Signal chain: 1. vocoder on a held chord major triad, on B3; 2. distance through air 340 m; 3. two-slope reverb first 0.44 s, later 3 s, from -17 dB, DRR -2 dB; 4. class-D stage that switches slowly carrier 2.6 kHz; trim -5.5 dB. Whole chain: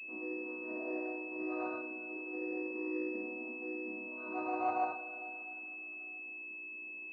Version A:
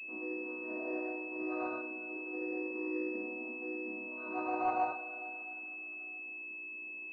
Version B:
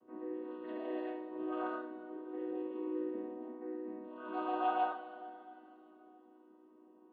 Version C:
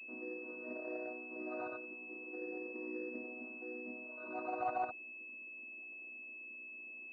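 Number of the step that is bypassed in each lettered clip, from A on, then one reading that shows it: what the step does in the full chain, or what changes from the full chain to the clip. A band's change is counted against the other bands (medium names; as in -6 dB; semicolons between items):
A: 2, loudness change +1.0 LU; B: 4, 2 kHz band -11.5 dB; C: 3, loudness change -4.0 LU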